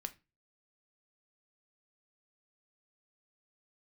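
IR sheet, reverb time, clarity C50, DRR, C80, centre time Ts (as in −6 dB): 0.25 s, 18.5 dB, 8.0 dB, 26.0 dB, 5 ms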